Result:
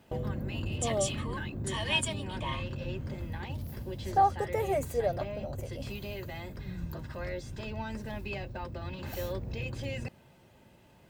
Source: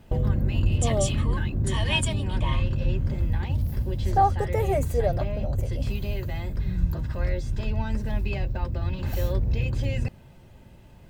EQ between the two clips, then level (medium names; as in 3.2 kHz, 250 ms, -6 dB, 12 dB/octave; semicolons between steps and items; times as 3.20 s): high-pass 260 Hz 6 dB/octave; -3.0 dB